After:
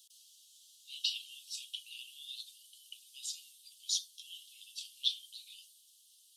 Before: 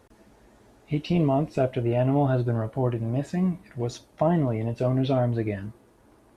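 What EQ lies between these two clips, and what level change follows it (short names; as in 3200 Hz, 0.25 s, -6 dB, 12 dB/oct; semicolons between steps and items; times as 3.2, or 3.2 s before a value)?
steep high-pass 3000 Hz 96 dB/oct; +10.0 dB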